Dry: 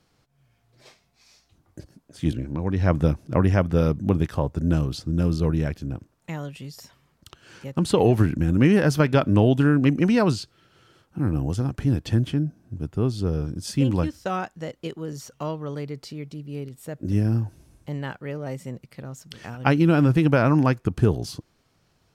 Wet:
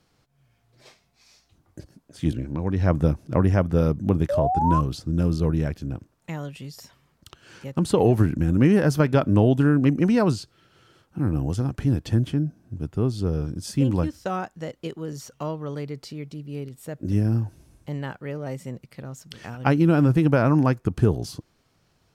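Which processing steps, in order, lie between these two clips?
dynamic bell 3 kHz, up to -5 dB, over -40 dBFS, Q 0.71; painted sound rise, 4.29–4.81 s, 550–1100 Hz -23 dBFS

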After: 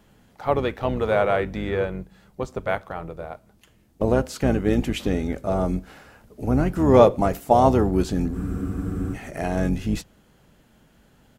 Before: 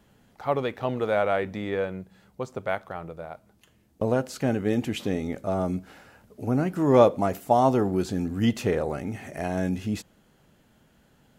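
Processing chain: octave divider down 2 oct, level -5 dB; harmony voices -5 st -12 dB; spectral freeze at 8.37 s, 0.77 s; trim +3 dB

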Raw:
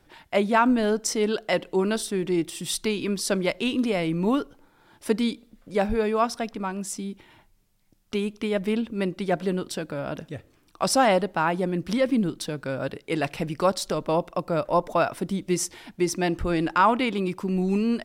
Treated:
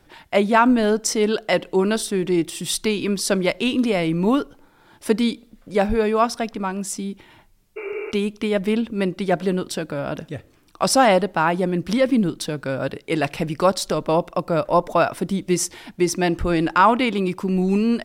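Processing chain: spectral replace 7.80–8.09 s, 320–2800 Hz after; trim +4.5 dB

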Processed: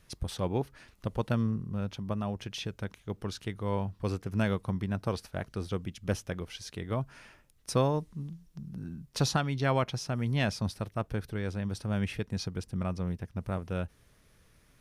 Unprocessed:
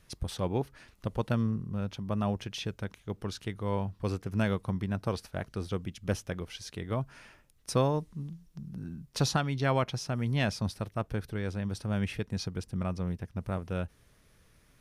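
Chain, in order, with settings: 2.12–2.75 s: compression 2:1, threshold -32 dBFS, peak gain reduction 4 dB

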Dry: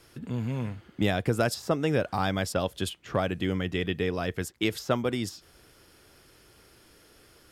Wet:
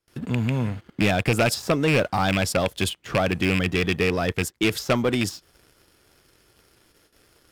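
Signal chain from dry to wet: rattle on loud lows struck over -27 dBFS, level -17 dBFS; gate with hold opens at -47 dBFS; waveshaping leveller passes 2

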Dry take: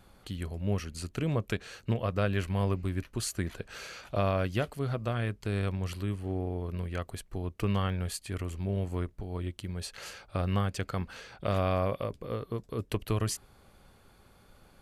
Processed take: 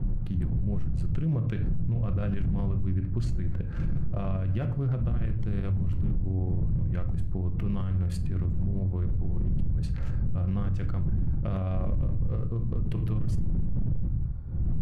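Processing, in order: local Wiener filter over 15 samples; wind noise 110 Hz -29 dBFS; tone controls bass +13 dB, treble -9 dB; simulated room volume 550 m³, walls furnished, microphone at 0.86 m; peak limiter -19 dBFS, peak gain reduction 22 dB; 2.74–3.47 s: peaking EQ 11 kHz -12 dB 0.58 oct; trim -1.5 dB

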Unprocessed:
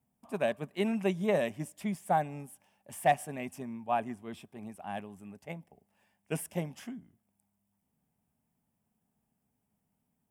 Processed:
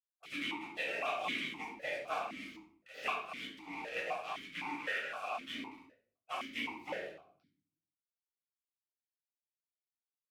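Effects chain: spectral peaks clipped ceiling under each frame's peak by 18 dB; 3.45–3.97 s: slow attack 339 ms; companded quantiser 4-bit; 1.75–2.94 s: level held to a coarse grid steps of 9 dB; spectral gate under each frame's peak -10 dB weak; compression 4:1, threshold -49 dBFS, peak gain reduction 19 dB; 4.54–5.14 s: peaking EQ 1.5 kHz +12.5 dB 0.52 oct; simulated room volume 790 m³, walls furnished, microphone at 6.7 m; stepped vowel filter 3.9 Hz; trim +17.5 dB

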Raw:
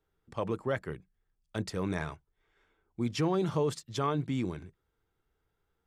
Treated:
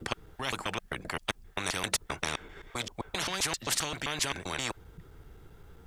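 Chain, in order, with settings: slices played last to first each 131 ms, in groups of 3; bass shelf 380 Hz +9.5 dB; spectrum-flattening compressor 10:1; trim +2.5 dB

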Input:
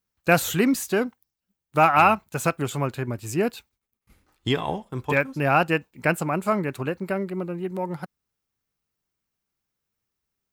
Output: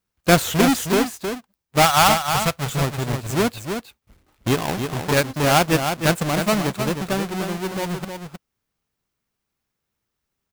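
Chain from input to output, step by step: square wave that keeps the level; 1.82–2.71 s: peaking EQ 320 Hz -12.5 dB 0.98 oct; delay 313 ms -7 dB; trim -1 dB

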